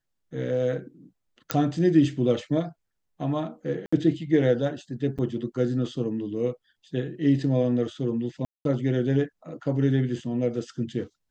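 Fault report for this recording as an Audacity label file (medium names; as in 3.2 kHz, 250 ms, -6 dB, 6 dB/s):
1.510000	1.510000	pop -7 dBFS
3.860000	3.920000	dropout 65 ms
5.180000	5.190000	dropout 6.7 ms
8.450000	8.650000	dropout 202 ms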